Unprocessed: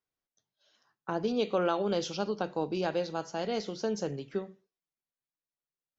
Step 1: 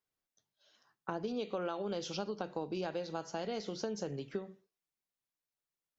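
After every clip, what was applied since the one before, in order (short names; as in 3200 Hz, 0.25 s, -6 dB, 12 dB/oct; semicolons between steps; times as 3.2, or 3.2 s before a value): compressor, threshold -34 dBFS, peak gain reduction 10 dB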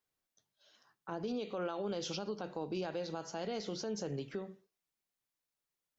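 limiter -31.5 dBFS, peak gain reduction 9.5 dB; gain +2 dB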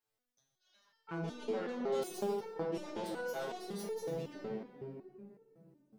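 self-modulated delay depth 0.15 ms; shoebox room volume 160 m³, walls hard, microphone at 0.42 m; stepped resonator 5.4 Hz 110–450 Hz; gain +8.5 dB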